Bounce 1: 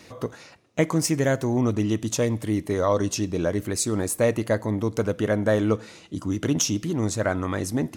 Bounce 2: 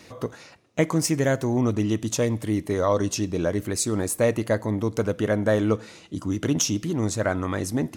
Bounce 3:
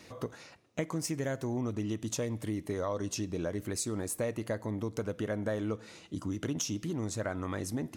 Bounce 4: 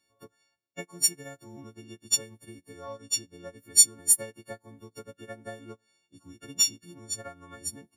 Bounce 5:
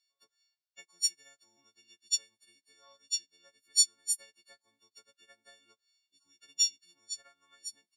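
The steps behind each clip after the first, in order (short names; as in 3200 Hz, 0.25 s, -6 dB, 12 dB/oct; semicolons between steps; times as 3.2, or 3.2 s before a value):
nothing audible
compressor 3:1, threshold -27 dBFS, peak gain reduction 9 dB; gain -5 dB
frequency quantiser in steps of 4 st; upward expander 2.5:1, over -43 dBFS; gain +7.5 dB
band-pass 4700 Hz, Q 2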